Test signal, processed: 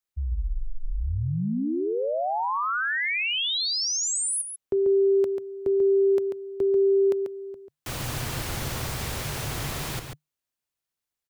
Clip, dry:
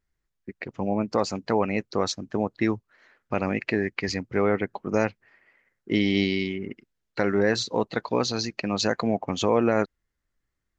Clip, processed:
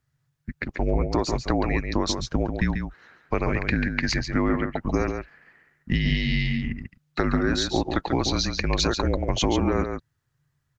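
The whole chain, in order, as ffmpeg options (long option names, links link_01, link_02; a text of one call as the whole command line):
ffmpeg -i in.wav -filter_complex "[0:a]afreqshift=-150,acompressor=threshold=-24dB:ratio=6,asplit=2[link_01][link_02];[link_02]adelay=139.9,volume=-6dB,highshelf=frequency=4000:gain=-3.15[link_03];[link_01][link_03]amix=inputs=2:normalize=0,volume=5dB" out.wav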